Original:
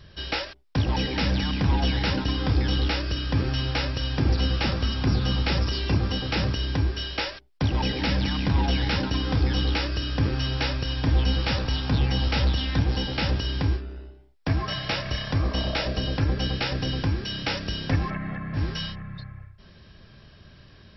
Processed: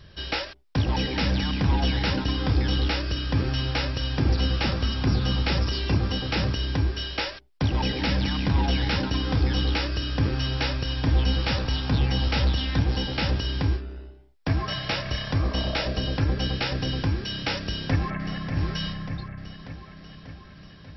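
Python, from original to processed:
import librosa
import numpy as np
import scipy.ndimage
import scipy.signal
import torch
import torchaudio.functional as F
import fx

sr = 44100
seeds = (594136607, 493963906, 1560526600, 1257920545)

y = fx.echo_throw(x, sr, start_s=17.6, length_s=0.96, ms=590, feedback_pct=65, wet_db=-8.5)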